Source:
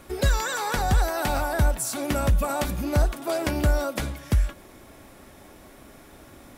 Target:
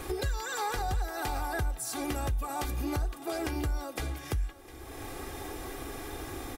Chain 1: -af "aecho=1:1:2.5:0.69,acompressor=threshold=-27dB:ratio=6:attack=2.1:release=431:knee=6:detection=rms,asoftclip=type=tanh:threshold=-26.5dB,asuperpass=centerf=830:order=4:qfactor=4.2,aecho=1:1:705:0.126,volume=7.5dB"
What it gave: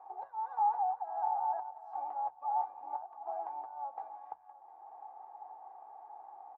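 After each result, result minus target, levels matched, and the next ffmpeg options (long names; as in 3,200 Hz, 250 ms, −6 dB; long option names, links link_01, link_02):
downward compressor: peak gain reduction −7 dB; 1,000 Hz band +6.0 dB
-af "aecho=1:1:2.5:0.69,acompressor=threshold=-35.5dB:ratio=6:attack=2.1:release=431:knee=6:detection=rms,asoftclip=type=tanh:threshold=-26.5dB,asuperpass=centerf=830:order=4:qfactor=4.2,aecho=1:1:705:0.126,volume=7.5dB"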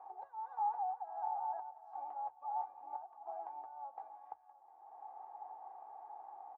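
1,000 Hz band +7.0 dB
-af "aecho=1:1:2.5:0.69,acompressor=threshold=-35.5dB:ratio=6:attack=2.1:release=431:knee=6:detection=rms,asoftclip=type=tanh:threshold=-26.5dB,aecho=1:1:705:0.126,volume=7.5dB"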